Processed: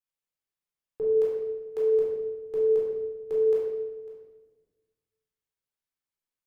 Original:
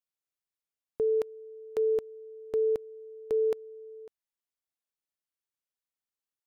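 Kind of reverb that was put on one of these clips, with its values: simulated room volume 850 m³, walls mixed, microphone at 4 m; trim -8 dB

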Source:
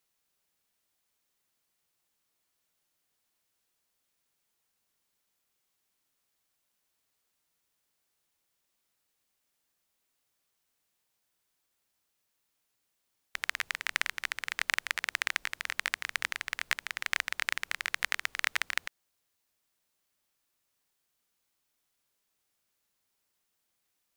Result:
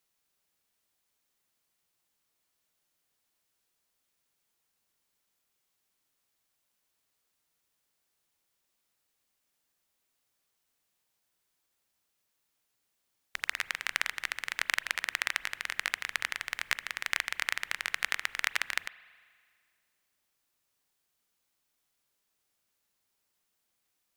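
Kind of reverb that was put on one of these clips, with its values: spring tank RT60 2 s, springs 37 ms, chirp 40 ms, DRR 17.5 dB

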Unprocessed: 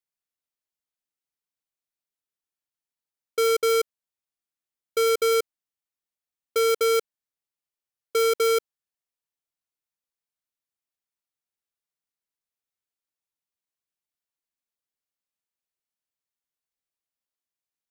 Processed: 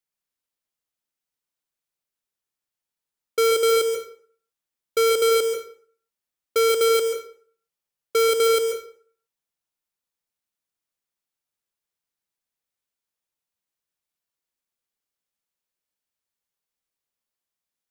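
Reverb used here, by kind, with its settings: plate-style reverb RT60 0.5 s, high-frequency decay 0.75×, pre-delay 120 ms, DRR 5.5 dB; trim +2.5 dB

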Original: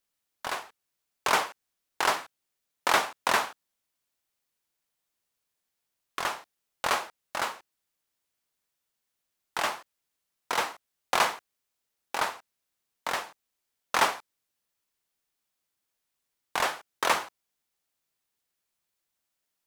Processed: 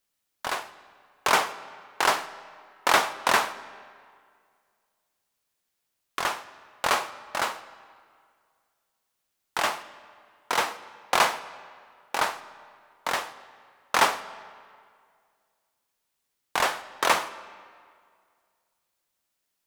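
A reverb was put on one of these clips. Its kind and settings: algorithmic reverb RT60 2.1 s, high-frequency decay 0.75×, pre-delay 10 ms, DRR 15 dB; trim +3 dB

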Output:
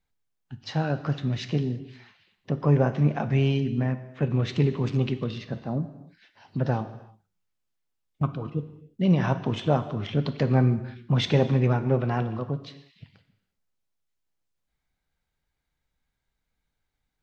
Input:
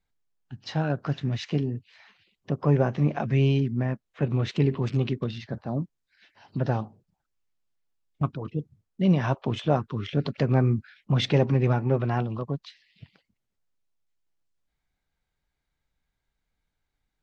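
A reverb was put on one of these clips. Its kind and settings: gated-style reverb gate 370 ms falling, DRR 10 dB

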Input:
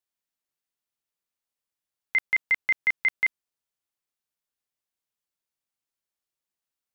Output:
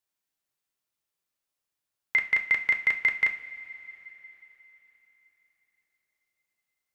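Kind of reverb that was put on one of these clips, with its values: two-slope reverb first 0.39 s, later 4.2 s, from -18 dB, DRR 4.5 dB; trim +1.5 dB

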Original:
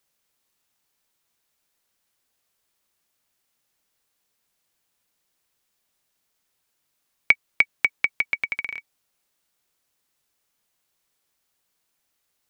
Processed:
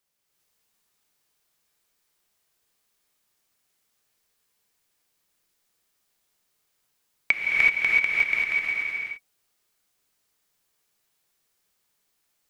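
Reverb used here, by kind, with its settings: gated-style reverb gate 400 ms rising, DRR -5 dB; trim -5 dB

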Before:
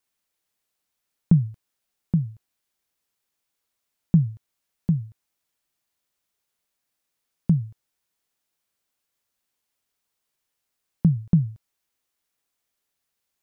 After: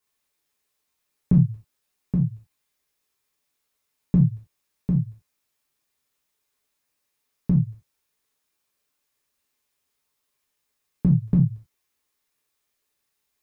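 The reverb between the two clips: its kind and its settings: gated-style reverb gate 110 ms falling, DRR -4.5 dB; trim -2.5 dB

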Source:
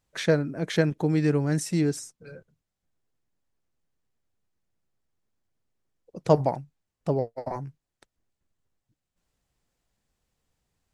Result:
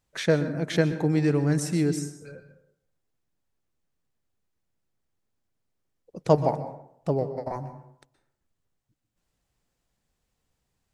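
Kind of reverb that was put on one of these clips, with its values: plate-style reverb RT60 0.69 s, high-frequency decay 0.5×, pre-delay 110 ms, DRR 11 dB

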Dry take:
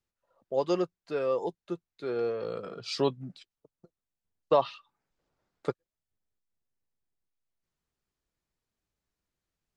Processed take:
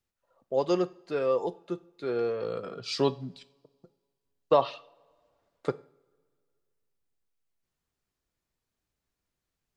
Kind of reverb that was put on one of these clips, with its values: two-slope reverb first 0.45 s, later 2.1 s, from -22 dB, DRR 14.5 dB; trim +1.5 dB

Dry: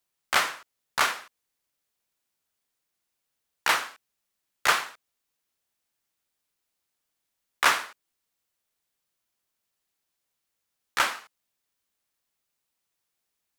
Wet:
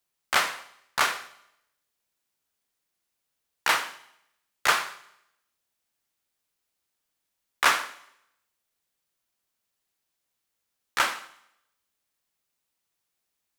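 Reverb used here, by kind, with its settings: Schroeder reverb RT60 0.79 s, combs from 33 ms, DRR 14 dB

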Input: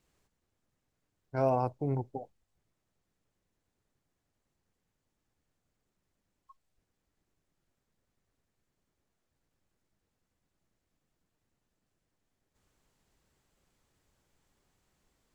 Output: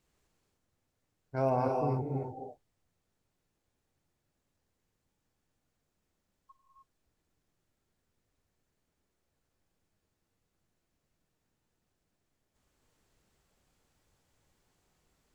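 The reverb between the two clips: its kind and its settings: gated-style reverb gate 330 ms rising, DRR 1 dB; trim -1.5 dB

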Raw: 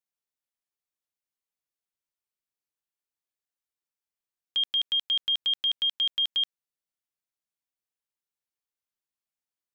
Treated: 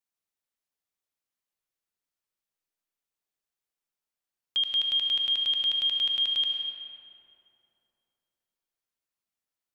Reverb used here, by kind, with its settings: algorithmic reverb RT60 3 s, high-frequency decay 0.5×, pre-delay 60 ms, DRR 2 dB

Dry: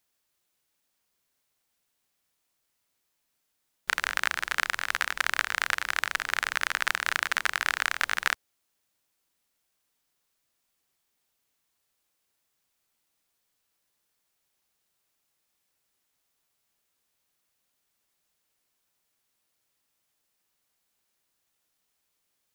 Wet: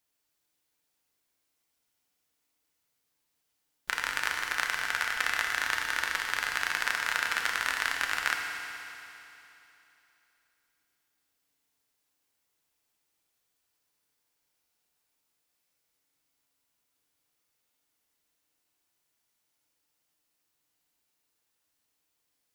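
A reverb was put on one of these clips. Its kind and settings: FDN reverb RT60 3 s, high-frequency decay 1×, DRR 1 dB; trim -4 dB

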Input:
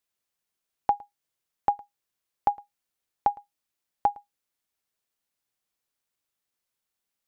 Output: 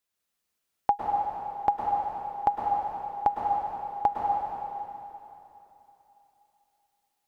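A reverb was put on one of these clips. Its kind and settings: plate-style reverb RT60 3.2 s, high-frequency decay 0.95×, pre-delay 95 ms, DRR -2.5 dB

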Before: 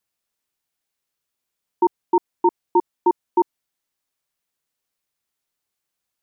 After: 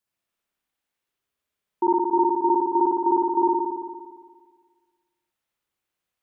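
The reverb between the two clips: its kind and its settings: spring tank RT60 1.6 s, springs 57 ms, chirp 75 ms, DRR -5.5 dB; trim -5.5 dB

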